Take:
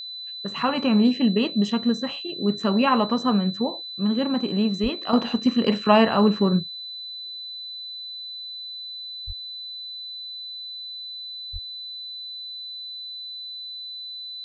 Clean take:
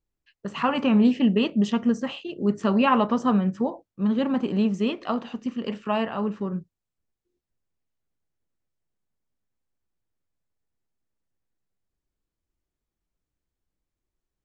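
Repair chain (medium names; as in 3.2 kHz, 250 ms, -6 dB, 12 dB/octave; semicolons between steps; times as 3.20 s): band-stop 4 kHz, Q 30; de-plosive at 4.82/9.26/11.52 s; trim 0 dB, from 5.13 s -9 dB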